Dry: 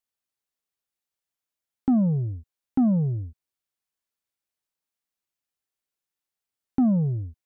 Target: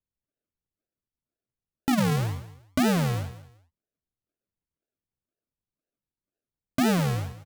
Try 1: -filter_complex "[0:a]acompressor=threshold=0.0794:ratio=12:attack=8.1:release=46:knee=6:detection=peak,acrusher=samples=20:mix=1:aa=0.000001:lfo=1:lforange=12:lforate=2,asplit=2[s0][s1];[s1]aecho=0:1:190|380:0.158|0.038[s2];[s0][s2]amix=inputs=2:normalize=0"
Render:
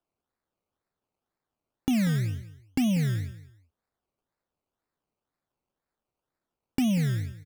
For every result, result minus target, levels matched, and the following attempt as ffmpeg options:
500 Hz band -8.5 dB; decimation with a swept rate: distortion -13 dB
-filter_complex "[0:a]acompressor=threshold=0.0794:ratio=12:attack=8.1:release=46:knee=6:detection=peak,lowpass=f=650:t=q:w=5.1,acrusher=samples=20:mix=1:aa=0.000001:lfo=1:lforange=12:lforate=2,asplit=2[s0][s1];[s1]aecho=0:1:190|380:0.158|0.038[s2];[s0][s2]amix=inputs=2:normalize=0"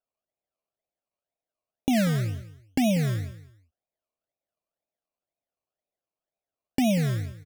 decimation with a swept rate: distortion -10 dB
-filter_complex "[0:a]acompressor=threshold=0.0794:ratio=12:attack=8.1:release=46:knee=6:detection=peak,lowpass=f=650:t=q:w=5.1,acrusher=samples=57:mix=1:aa=0.000001:lfo=1:lforange=34.2:lforate=2,asplit=2[s0][s1];[s1]aecho=0:1:190|380:0.158|0.038[s2];[s0][s2]amix=inputs=2:normalize=0"

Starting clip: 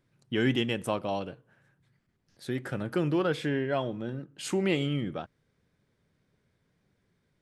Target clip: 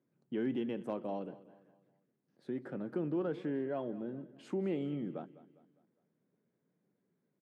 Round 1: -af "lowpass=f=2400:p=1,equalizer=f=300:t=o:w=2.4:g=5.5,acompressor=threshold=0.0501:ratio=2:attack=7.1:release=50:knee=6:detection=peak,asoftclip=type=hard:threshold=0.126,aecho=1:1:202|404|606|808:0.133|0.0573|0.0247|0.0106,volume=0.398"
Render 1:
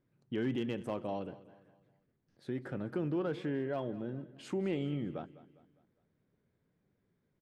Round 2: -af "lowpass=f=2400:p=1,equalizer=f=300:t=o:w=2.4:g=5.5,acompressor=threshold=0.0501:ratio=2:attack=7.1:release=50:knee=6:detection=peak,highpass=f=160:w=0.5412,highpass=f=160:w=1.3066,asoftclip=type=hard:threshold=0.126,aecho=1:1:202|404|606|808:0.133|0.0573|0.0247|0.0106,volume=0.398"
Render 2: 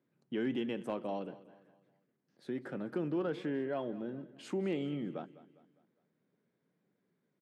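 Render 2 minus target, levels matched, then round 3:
2 kHz band +4.5 dB
-af "lowpass=f=880:p=1,equalizer=f=300:t=o:w=2.4:g=5.5,acompressor=threshold=0.0501:ratio=2:attack=7.1:release=50:knee=6:detection=peak,highpass=f=160:w=0.5412,highpass=f=160:w=1.3066,asoftclip=type=hard:threshold=0.126,aecho=1:1:202|404|606|808:0.133|0.0573|0.0247|0.0106,volume=0.398"

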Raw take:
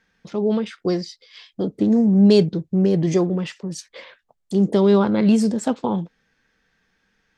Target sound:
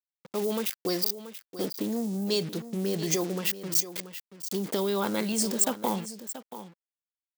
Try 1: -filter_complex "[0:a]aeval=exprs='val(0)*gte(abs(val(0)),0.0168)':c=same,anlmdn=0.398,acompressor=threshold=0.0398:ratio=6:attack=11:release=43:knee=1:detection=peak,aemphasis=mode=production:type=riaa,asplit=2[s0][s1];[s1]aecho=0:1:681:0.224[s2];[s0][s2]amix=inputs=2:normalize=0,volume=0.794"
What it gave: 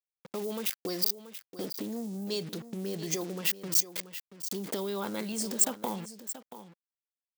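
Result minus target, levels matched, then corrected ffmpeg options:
compression: peak gain reduction +6.5 dB
-filter_complex "[0:a]aeval=exprs='val(0)*gte(abs(val(0)),0.0168)':c=same,anlmdn=0.398,acompressor=threshold=0.0944:ratio=6:attack=11:release=43:knee=1:detection=peak,aemphasis=mode=production:type=riaa,asplit=2[s0][s1];[s1]aecho=0:1:681:0.224[s2];[s0][s2]amix=inputs=2:normalize=0,volume=0.794"

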